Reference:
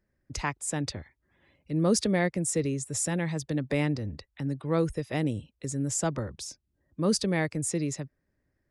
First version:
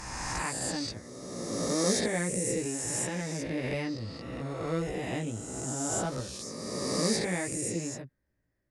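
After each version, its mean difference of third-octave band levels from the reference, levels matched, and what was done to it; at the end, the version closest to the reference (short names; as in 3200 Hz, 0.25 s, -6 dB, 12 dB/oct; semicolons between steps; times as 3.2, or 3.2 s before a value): 11.0 dB: spectral swells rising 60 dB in 2.09 s; chorus 1.6 Hz, delay 15.5 ms, depth 2.5 ms; gain -3.5 dB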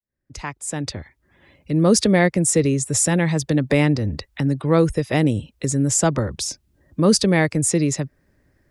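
1.5 dB: opening faded in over 2.21 s; in parallel at +0.5 dB: compressor, threshold -39 dBFS, peak gain reduction 17.5 dB; on the sum: gain +8.5 dB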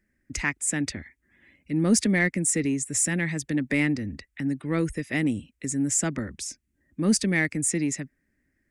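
3.5 dB: graphic EQ 125/250/500/1000/2000/4000/8000 Hz -6/+8/-6/-8/+11/-6/+6 dB; in parallel at -10 dB: soft clip -22 dBFS, distortion -13 dB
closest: second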